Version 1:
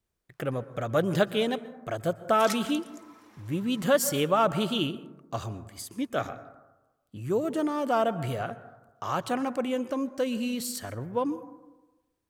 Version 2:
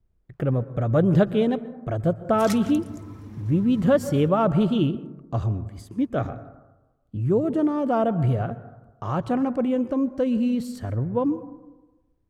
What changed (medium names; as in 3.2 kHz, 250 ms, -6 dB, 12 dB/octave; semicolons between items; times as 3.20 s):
speech: add tilt EQ -4 dB/octave; background: remove high-pass 770 Hz 12 dB/octave